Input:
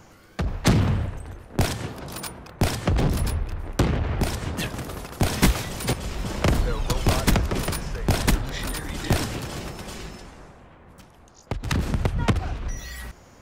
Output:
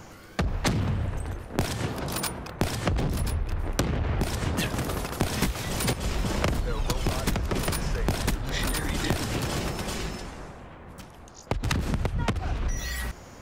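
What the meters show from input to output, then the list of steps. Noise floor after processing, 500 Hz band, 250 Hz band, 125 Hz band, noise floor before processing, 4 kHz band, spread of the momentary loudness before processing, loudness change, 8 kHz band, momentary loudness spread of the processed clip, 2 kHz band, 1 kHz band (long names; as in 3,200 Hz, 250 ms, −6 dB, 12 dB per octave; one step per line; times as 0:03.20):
−46 dBFS, −2.5 dB, −3.5 dB, −3.5 dB, −51 dBFS, −1.5 dB, 13 LU, −3.0 dB, −1.5 dB, 8 LU, −1.5 dB, −2.0 dB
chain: downward compressor 12 to 1, threshold −27 dBFS, peak gain reduction 15 dB
level +4.5 dB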